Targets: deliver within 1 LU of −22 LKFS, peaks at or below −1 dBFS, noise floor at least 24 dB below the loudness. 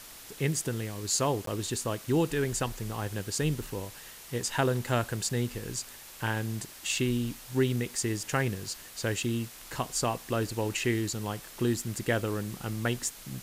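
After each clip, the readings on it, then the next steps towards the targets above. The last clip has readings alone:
number of dropouts 1; longest dropout 13 ms; background noise floor −48 dBFS; target noise floor −55 dBFS; integrated loudness −31.0 LKFS; sample peak −11.5 dBFS; target loudness −22.0 LKFS
→ repair the gap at 0:01.46, 13 ms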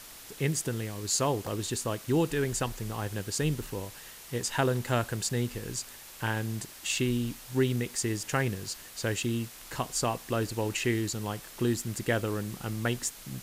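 number of dropouts 0; background noise floor −48 dBFS; target noise floor −55 dBFS
→ broadband denoise 7 dB, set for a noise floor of −48 dBFS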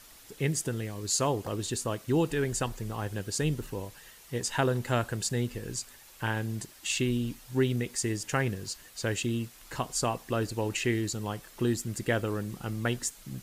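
background noise floor −53 dBFS; target noise floor −56 dBFS
→ broadband denoise 6 dB, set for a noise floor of −53 dBFS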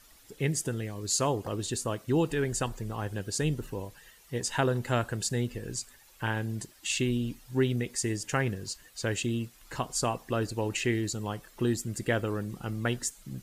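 background noise floor −58 dBFS; integrated loudness −31.5 LKFS; sample peak −12.0 dBFS; target loudness −22.0 LKFS
→ level +9.5 dB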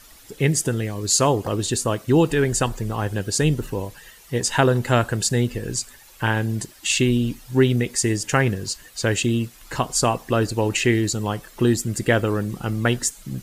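integrated loudness −22.0 LKFS; sample peak −2.5 dBFS; background noise floor −48 dBFS

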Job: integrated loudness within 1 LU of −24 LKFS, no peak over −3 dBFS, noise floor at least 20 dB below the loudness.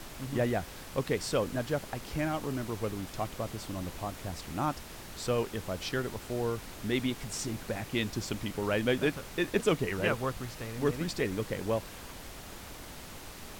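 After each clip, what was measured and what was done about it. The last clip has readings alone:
background noise floor −46 dBFS; target noise floor −54 dBFS; integrated loudness −33.5 LKFS; sample peak −13.5 dBFS; target loudness −24.0 LKFS
→ noise reduction from a noise print 8 dB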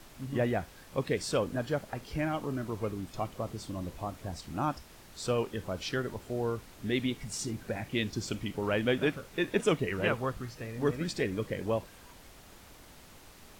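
background noise floor −54 dBFS; integrated loudness −33.5 LKFS; sample peak −13.0 dBFS; target loudness −24.0 LKFS
→ level +9.5 dB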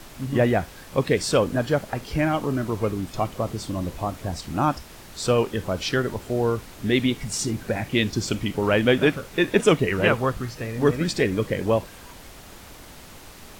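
integrated loudness −24.0 LKFS; sample peak −3.5 dBFS; background noise floor −44 dBFS

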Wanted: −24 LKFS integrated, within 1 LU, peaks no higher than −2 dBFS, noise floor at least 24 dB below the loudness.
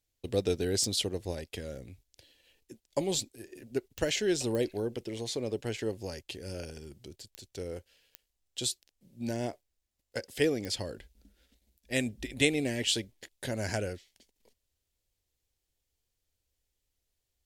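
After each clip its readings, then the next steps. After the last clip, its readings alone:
number of clicks 6; integrated loudness −33.0 LKFS; sample peak −8.5 dBFS; target loudness −24.0 LKFS
→ click removal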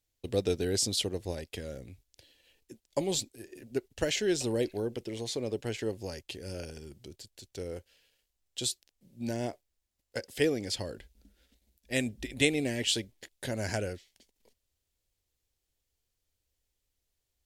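number of clicks 0; integrated loudness −33.0 LKFS; sample peak −8.5 dBFS; target loudness −24.0 LKFS
→ level +9 dB
brickwall limiter −2 dBFS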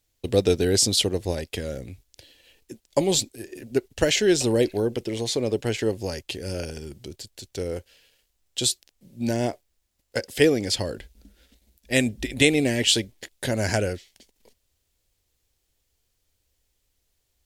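integrated loudness −24.5 LKFS; sample peak −2.0 dBFS; background noise floor −74 dBFS

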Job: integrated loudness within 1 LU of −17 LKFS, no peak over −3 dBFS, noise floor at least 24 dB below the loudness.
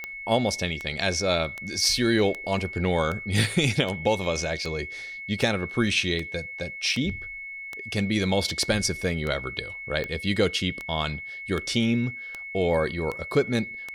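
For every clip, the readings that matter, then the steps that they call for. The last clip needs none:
number of clicks 19; interfering tone 2,200 Hz; level of the tone −35 dBFS; integrated loudness −26.0 LKFS; sample peak −9.5 dBFS; target loudness −17.0 LKFS
→ click removal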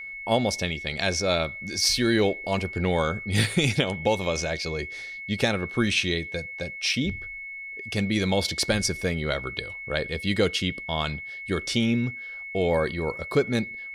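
number of clicks 0; interfering tone 2,200 Hz; level of the tone −35 dBFS
→ notch filter 2,200 Hz, Q 30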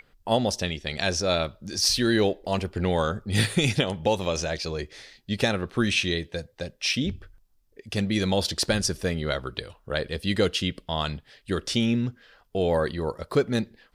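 interfering tone none found; integrated loudness −26.0 LKFS; sample peak −9.5 dBFS; target loudness −17.0 LKFS
→ level +9 dB
brickwall limiter −3 dBFS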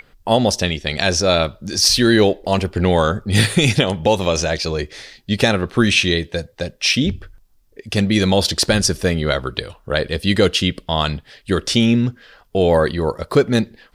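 integrated loudness −17.5 LKFS; sample peak −3.0 dBFS; background noise floor −54 dBFS

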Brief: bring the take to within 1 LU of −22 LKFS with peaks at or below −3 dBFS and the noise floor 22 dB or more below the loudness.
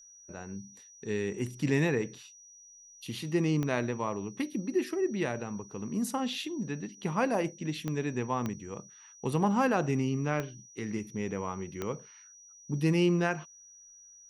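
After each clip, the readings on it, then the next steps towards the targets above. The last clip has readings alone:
number of clicks 5; interfering tone 5,800 Hz; level of the tone −52 dBFS; integrated loudness −32.0 LKFS; sample peak −14.5 dBFS; target loudness −22.0 LKFS
→ click removal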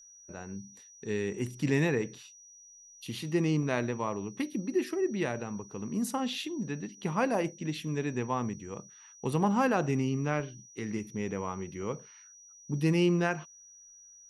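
number of clicks 0; interfering tone 5,800 Hz; level of the tone −52 dBFS
→ notch filter 5,800 Hz, Q 30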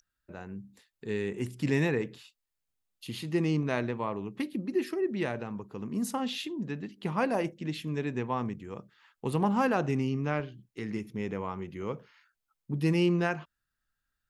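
interfering tone none found; integrated loudness −32.0 LKFS; sample peak −14.5 dBFS; target loudness −22.0 LKFS
→ level +10 dB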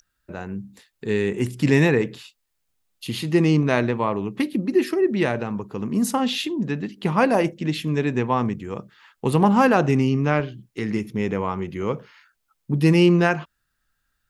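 integrated loudness −22.0 LKFS; sample peak −4.5 dBFS; background noise floor −74 dBFS

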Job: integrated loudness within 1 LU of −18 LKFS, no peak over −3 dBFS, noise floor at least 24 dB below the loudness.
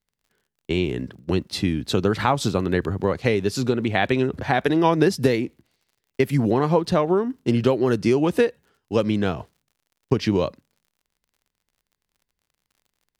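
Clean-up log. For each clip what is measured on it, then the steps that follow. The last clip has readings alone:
crackle rate 48 per second; integrated loudness −22.5 LKFS; sample peak −5.0 dBFS; target loudness −18.0 LKFS
→ click removal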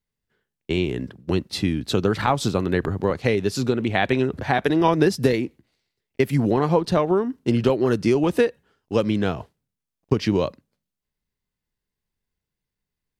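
crackle rate 0.076 per second; integrated loudness −22.5 LKFS; sample peak −5.0 dBFS; target loudness −18.0 LKFS
→ level +4.5 dB
brickwall limiter −3 dBFS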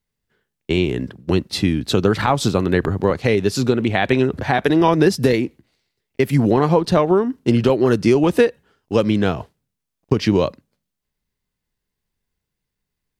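integrated loudness −18.0 LKFS; sample peak −3.0 dBFS; background noise floor −81 dBFS

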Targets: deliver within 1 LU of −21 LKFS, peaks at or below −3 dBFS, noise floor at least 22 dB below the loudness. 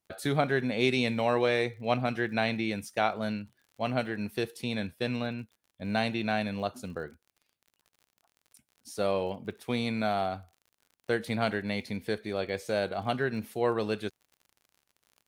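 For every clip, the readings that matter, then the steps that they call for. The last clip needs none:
crackle rate 47 per second; integrated loudness −31.0 LKFS; sample peak −11.5 dBFS; target loudness −21.0 LKFS
→ click removal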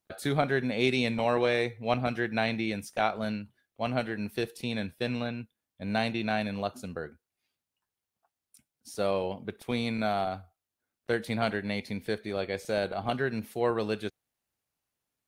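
crackle rate 0 per second; integrated loudness −31.0 LKFS; sample peak −11.5 dBFS; target loudness −21.0 LKFS
→ level +10 dB
brickwall limiter −3 dBFS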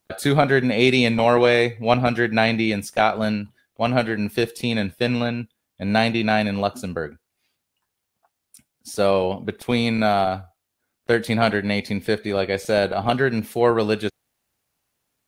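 integrated loudness −21.0 LKFS; sample peak −3.0 dBFS; background noise floor −79 dBFS

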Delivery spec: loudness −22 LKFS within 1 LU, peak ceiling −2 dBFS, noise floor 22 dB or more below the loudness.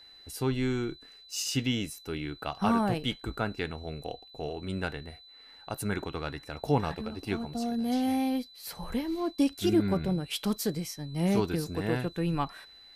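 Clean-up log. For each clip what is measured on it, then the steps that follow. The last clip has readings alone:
interfering tone 4,000 Hz; level of the tone −51 dBFS; integrated loudness −31.5 LKFS; sample peak −13.0 dBFS; target loudness −22.0 LKFS
→ notch filter 4,000 Hz, Q 30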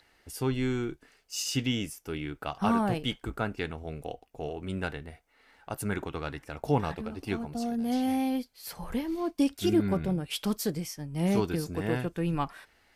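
interfering tone none found; integrated loudness −31.5 LKFS; sample peak −13.5 dBFS; target loudness −22.0 LKFS
→ level +9.5 dB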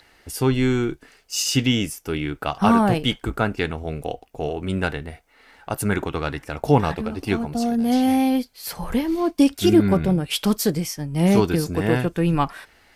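integrated loudness −22.0 LKFS; sample peak −3.5 dBFS; background noise floor −57 dBFS

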